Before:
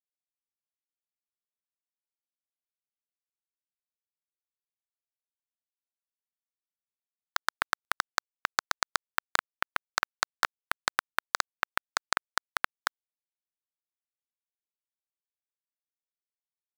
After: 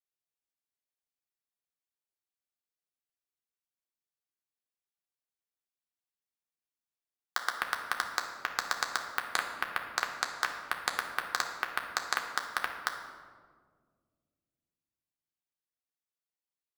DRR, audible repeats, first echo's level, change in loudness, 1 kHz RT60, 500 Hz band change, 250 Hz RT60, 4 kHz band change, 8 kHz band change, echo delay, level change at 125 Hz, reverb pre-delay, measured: 1.5 dB, no echo, no echo, -2.0 dB, 1.5 s, -1.0 dB, 2.7 s, -2.5 dB, -2.5 dB, no echo, -2.5 dB, 3 ms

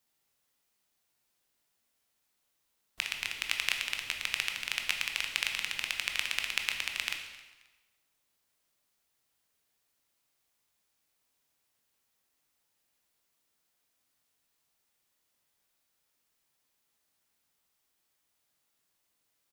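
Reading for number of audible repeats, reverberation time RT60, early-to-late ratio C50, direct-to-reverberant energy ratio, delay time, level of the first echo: 2, 1.2 s, 6.0 dB, 3.5 dB, 266 ms, -21.0 dB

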